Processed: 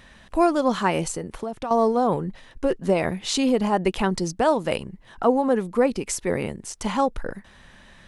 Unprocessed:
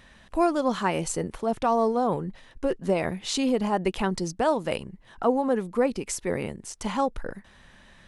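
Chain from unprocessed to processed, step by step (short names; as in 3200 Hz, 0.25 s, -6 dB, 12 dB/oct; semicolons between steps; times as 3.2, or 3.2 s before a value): 1.04–1.71 compressor 12:1, threshold -30 dBFS, peak gain reduction 12 dB; gain +3.5 dB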